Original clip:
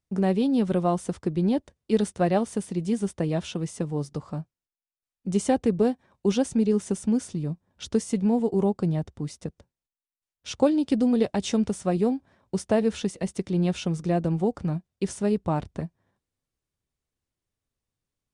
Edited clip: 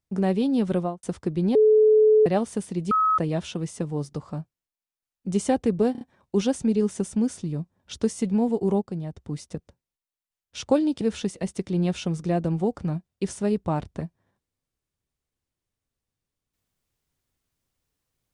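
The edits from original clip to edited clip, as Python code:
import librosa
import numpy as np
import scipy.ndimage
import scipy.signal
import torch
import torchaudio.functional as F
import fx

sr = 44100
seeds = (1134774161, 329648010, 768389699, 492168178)

y = fx.studio_fade_out(x, sr, start_s=0.76, length_s=0.27)
y = fx.edit(y, sr, fx.bleep(start_s=1.55, length_s=0.71, hz=431.0, db=-13.0),
    fx.bleep(start_s=2.91, length_s=0.27, hz=1280.0, db=-17.5),
    fx.stutter(start_s=5.92, slice_s=0.03, count=4),
    fx.clip_gain(start_s=8.73, length_s=0.35, db=-6.5),
    fx.cut(start_s=10.92, length_s=1.89), tone=tone)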